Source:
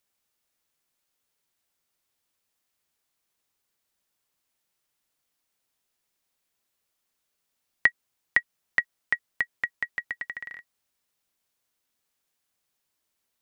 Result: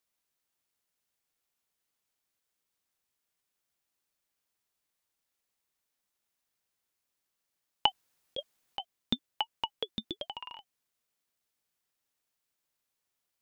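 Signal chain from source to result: 7.86–8.8 negative-ratio compressor -26 dBFS, ratio -0.5; ring modulator with a swept carrier 1300 Hz, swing 30%, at 1.1 Hz; gain -2 dB

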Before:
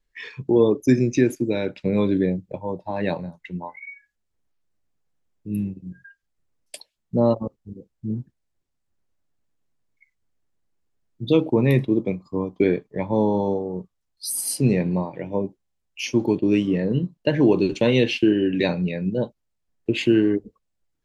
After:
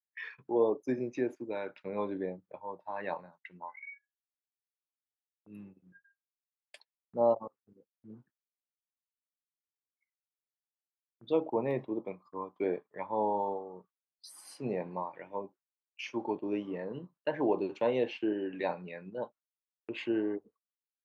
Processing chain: gate -41 dBFS, range -20 dB; auto-wah 750–1600 Hz, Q 2.1, down, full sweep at -14 dBFS; gain -1.5 dB

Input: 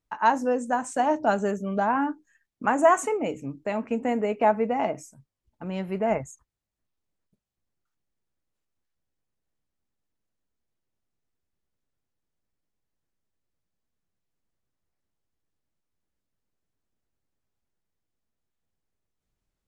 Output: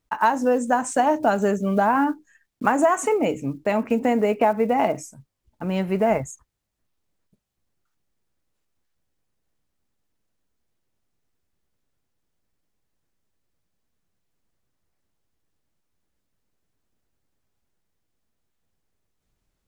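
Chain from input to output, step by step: block floating point 7-bit; compressor 6:1, threshold -22 dBFS, peak gain reduction 9 dB; gain +7 dB

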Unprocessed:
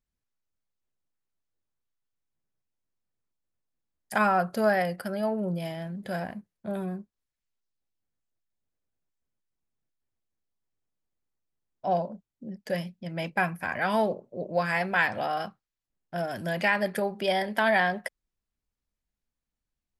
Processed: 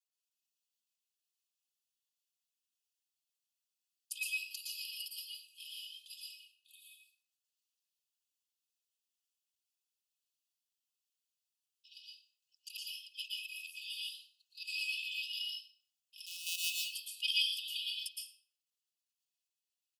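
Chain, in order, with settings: 16.26–16.7 sample sorter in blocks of 256 samples; comb 3.5 ms, depth 65%; level quantiser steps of 10 dB; brick-wall FIR high-pass 2500 Hz; reverb RT60 0.50 s, pre-delay 0.109 s, DRR -2.5 dB; gain +2 dB

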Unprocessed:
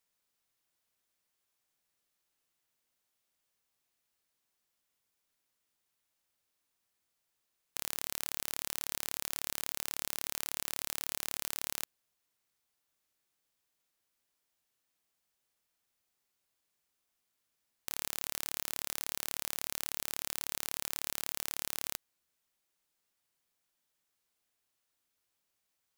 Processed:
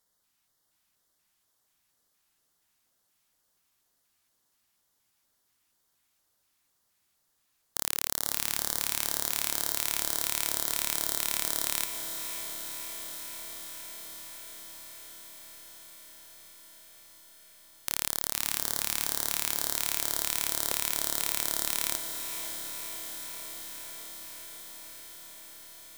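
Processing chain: LFO notch square 2.1 Hz 490–2500 Hz; diffused feedback echo 0.571 s, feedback 78%, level -8 dB; gain +7.5 dB; Vorbis 128 kbps 44100 Hz

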